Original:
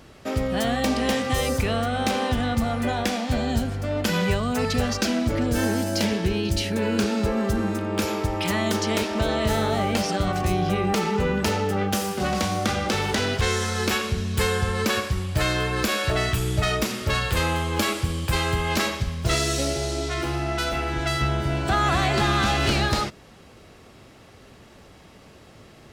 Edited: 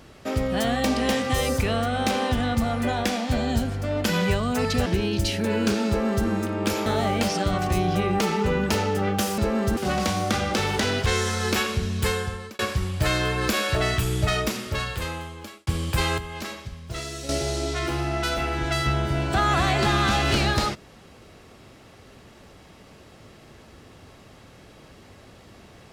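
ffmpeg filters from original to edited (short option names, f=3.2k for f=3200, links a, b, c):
-filter_complex "[0:a]asplit=9[a][b][c][d][e][f][g][h][i];[a]atrim=end=4.862[j];[b]atrim=start=6.178:end=8.182[k];[c]atrim=start=9.598:end=12.122[l];[d]atrim=start=7.198:end=7.592[m];[e]atrim=start=12.118:end=14.94,asetpts=PTS-STARTPTS,afade=t=out:st=2.212:d=0.61[n];[f]atrim=start=14.94:end=18.02,asetpts=PTS-STARTPTS,afade=t=in:d=0.004:c=hsin,afade=t=out:st=1.66:d=1.42[o];[g]atrim=start=18.02:end=18.532,asetpts=PTS-STARTPTS,afade=t=in:d=0.004:c=hsin[p];[h]atrim=start=18.528:end=19.642,asetpts=PTS-STARTPTS,volume=-10.5dB[q];[i]atrim=start=19.638[r];[j][k]acrossfade=d=0.004:c1=hsin:c2=hsin[s];[s][l]acrossfade=d=0.004:c1=hsin:c2=hsin[t];[t][m]acrossfade=d=0.004:c1=hsin:c2=hsin[u];[n][o][p]concat=n=3:v=0:a=1[v];[u][v]acrossfade=d=0.004:c1=hsin:c2=hsin[w];[w][q]acrossfade=d=0.004:c1=hsin:c2=hsin[x];[x][r]acrossfade=d=0.004:c1=hsin:c2=hsin"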